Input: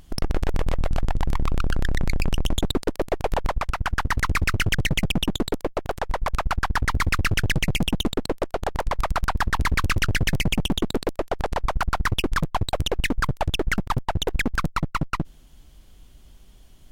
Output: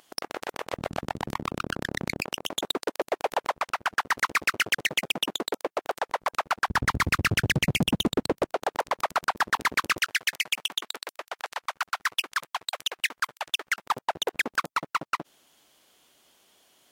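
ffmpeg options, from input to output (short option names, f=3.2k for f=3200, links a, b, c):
-af "asetnsamples=n=441:p=0,asendcmd='0.73 highpass f 210;2.21 highpass f 480;6.68 highpass f 110;8.54 highpass f 390;9.98 highpass f 1300;13.84 highpass f 490',highpass=580"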